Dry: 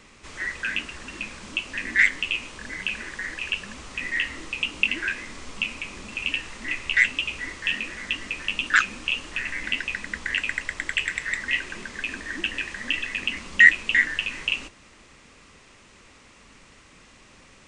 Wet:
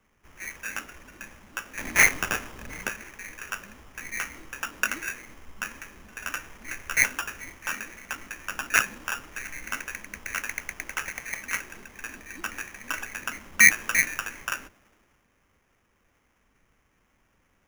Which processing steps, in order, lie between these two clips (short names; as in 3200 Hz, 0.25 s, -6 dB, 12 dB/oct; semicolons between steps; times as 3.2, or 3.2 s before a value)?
1.78–2.89 half-waves squared off; sample-rate reducer 4200 Hz, jitter 0%; three-band expander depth 40%; gain -6 dB